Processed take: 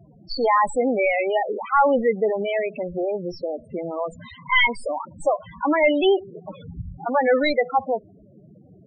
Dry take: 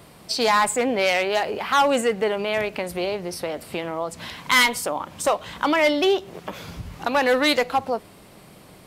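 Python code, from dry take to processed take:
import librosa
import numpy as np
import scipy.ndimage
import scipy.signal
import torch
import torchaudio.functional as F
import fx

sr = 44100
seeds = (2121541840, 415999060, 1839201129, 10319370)

y = fx.tracing_dist(x, sr, depth_ms=0.14)
y = fx.spec_topn(y, sr, count=8)
y = y * 10.0 ** (2.0 / 20.0)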